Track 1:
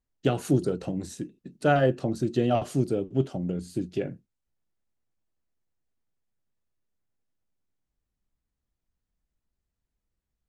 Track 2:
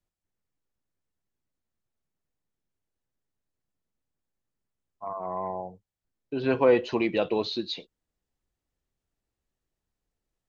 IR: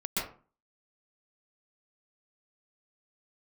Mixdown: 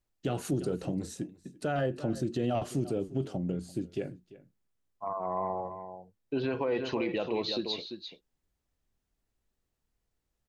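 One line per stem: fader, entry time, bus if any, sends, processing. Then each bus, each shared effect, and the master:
-2.0 dB, 0.00 s, no send, echo send -21.5 dB, auto duck -8 dB, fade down 1.70 s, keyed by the second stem
0.0 dB, 0.00 s, no send, echo send -10 dB, compression 2:1, threshold -25 dBFS, peak gain reduction 6 dB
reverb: none
echo: delay 342 ms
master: peak limiter -21.5 dBFS, peak gain reduction 9.5 dB

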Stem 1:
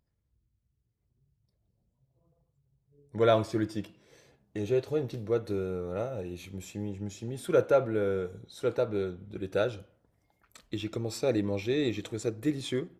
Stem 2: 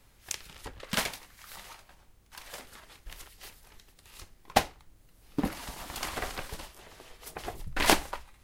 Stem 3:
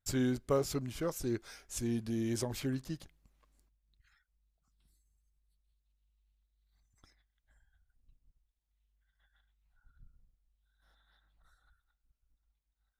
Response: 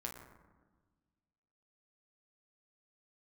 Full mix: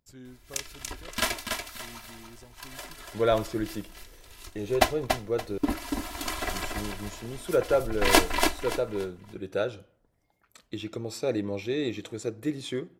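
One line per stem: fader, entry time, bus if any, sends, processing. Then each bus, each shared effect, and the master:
0.0 dB, 0.00 s, muted 5.58–6.38 s, no send, no echo send, bass shelf 110 Hz -7 dB
0.0 dB, 0.25 s, no send, echo send -5 dB, comb 3 ms, depth 91%
-16.0 dB, 0.00 s, no send, no echo send, none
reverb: none
echo: feedback delay 286 ms, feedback 28%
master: none

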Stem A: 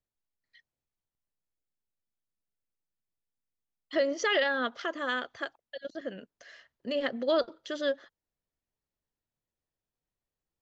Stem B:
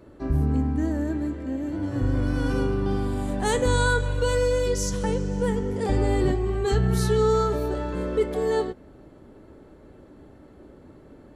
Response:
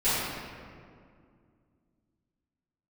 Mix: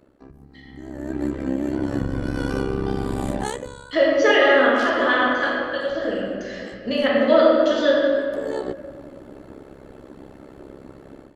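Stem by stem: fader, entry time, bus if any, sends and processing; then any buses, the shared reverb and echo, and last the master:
-7.5 dB, 0.00 s, send -4 dB, low-pass that closes with the level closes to 2.6 kHz, closed at -26 dBFS
-0.5 dB, 0.00 s, no send, AM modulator 67 Hz, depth 85%; compression 6:1, threshold -29 dBFS, peak gain reduction 10 dB; auto duck -21 dB, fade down 0.55 s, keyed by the first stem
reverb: on, RT60 2.2 s, pre-delay 4 ms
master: bass shelf 160 Hz -6.5 dB; level rider gain up to 12.5 dB

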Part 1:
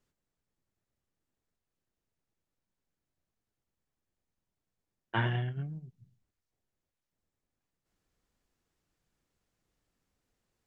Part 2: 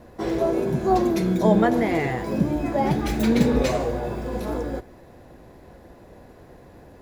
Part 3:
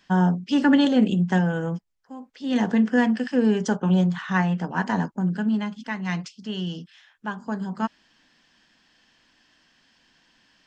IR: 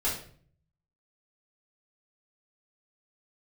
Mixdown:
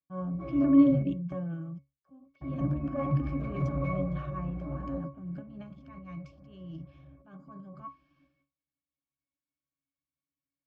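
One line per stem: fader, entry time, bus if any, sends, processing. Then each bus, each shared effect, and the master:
-16.0 dB, 0.00 s, no send, none
-2.5 dB, 0.20 s, muted 1.03–2.41 s, no send, one-sided wavefolder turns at -18.5 dBFS; graphic EQ 125/1000/2000 Hz +10/+8/+6 dB
+1.0 dB, 0.00 s, no send, treble shelf 3.3 kHz +4.5 dB; transient shaper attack -6 dB, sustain +10 dB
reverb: none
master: gate with hold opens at -45 dBFS; pitch-class resonator C#, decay 0.22 s

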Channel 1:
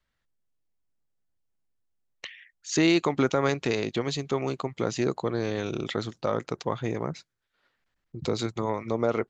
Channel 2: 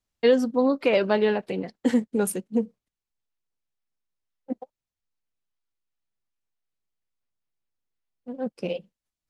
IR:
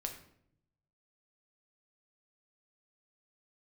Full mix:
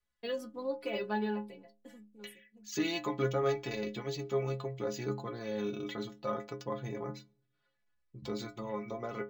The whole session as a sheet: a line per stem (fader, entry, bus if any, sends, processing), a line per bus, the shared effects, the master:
+1.0 dB, 0.00 s, send -19.5 dB, none
-3.0 dB, 0.00 s, no send, treble shelf 8.5 kHz +11 dB; auto duck -19 dB, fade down 1.00 s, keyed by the first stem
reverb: on, RT60 0.70 s, pre-delay 6 ms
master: inharmonic resonator 62 Hz, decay 0.56 s, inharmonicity 0.03; decimation joined by straight lines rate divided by 2×

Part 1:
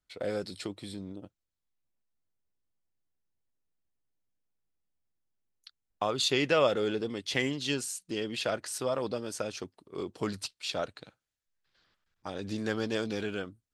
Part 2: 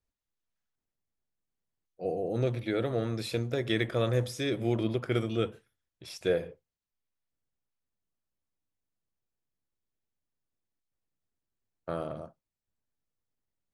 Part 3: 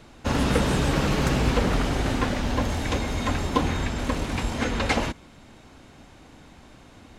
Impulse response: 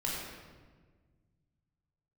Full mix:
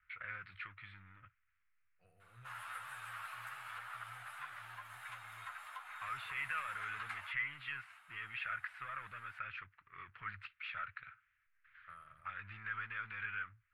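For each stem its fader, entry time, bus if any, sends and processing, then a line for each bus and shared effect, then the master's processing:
-4.0 dB, 0.00 s, no bus, no send, peak limiter -23 dBFS, peak gain reduction 10.5 dB; power-law waveshaper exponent 0.7; four-pole ladder low-pass 2.6 kHz, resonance 50%
-18.5 dB, 0.00 s, bus A, no send, peak limiter -20 dBFS, peak gain reduction 5.5 dB
-13.0 dB, 2.20 s, bus A, no send, resonant high-pass 700 Hz, resonance Q 3.8; three-phase chorus
bus A: 0.0 dB, compression 2.5:1, threshold -51 dBFS, peak gain reduction 13 dB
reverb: none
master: FFT filter 110 Hz 0 dB, 240 Hz -23 dB, 410 Hz -25 dB, 790 Hz -13 dB, 1.3 kHz +12 dB, 2.7 kHz +4 dB, 6 kHz -11 dB, 10 kHz +10 dB

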